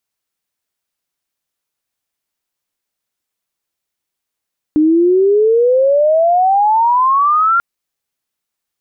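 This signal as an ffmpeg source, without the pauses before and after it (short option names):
-f lavfi -i "aevalsrc='pow(10,(-7.5-1.5*t/2.84)/20)*sin(2*PI*300*2.84/log(1400/300)*(exp(log(1400/300)*t/2.84)-1))':d=2.84:s=44100"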